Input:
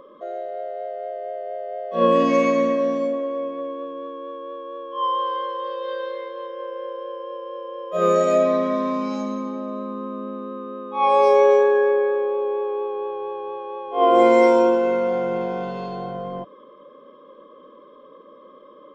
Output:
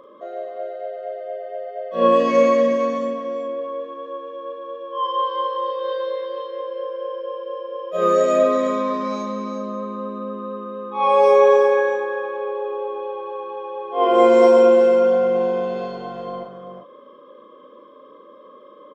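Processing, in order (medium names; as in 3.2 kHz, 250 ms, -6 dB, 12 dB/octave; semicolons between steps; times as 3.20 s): bass shelf 120 Hz -11.5 dB; doubling 38 ms -5 dB; delay 365 ms -8 dB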